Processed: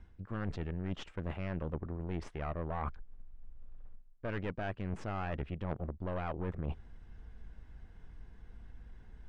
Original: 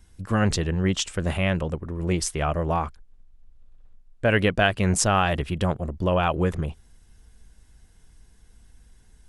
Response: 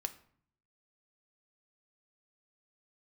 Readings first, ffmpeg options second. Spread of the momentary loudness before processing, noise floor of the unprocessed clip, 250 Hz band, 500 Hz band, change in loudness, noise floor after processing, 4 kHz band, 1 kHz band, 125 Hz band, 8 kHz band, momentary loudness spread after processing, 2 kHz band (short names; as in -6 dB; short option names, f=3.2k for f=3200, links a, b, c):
7 LU, -55 dBFS, -14.5 dB, -15.5 dB, -15.5 dB, -57 dBFS, -23.5 dB, -16.0 dB, -13.5 dB, under -35 dB, 18 LU, -19.0 dB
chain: -af "aeval=exprs='(tanh(11.2*val(0)+0.75)-tanh(0.75))/11.2':c=same,areverse,acompressor=threshold=-41dB:ratio=6,areverse,lowpass=2k,volume=6.5dB"